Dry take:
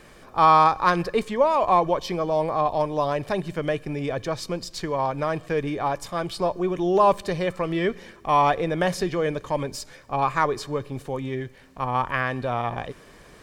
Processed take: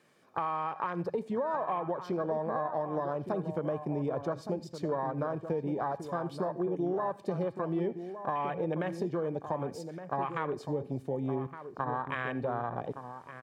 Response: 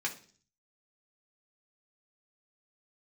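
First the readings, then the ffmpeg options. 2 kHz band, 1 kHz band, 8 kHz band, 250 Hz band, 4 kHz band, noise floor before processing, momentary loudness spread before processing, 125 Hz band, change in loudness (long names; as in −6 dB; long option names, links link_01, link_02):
−12.0 dB, −12.5 dB, below −15 dB, −6.0 dB, −18.5 dB, −50 dBFS, 12 LU, −7.0 dB, −10.0 dB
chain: -filter_complex "[0:a]highpass=frequency=120:width=0.5412,highpass=frequency=120:width=1.3066,afwtdn=0.0398,alimiter=limit=-16.5dB:level=0:latency=1:release=208,acompressor=threshold=-29dB:ratio=6,asplit=2[link_01][link_02];[link_02]adelay=1166,volume=-9dB,highshelf=frequency=4000:gain=-26.2[link_03];[link_01][link_03]amix=inputs=2:normalize=0,asplit=2[link_04][link_05];[1:a]atrim=start_sample=2205,adelay=76[link_06];[link_05][link_06]afir=irnorm=-1:irlink=0,volume=-21.5dB[link_07];[link_04][link_07]amix=inputs=2:normalize=0"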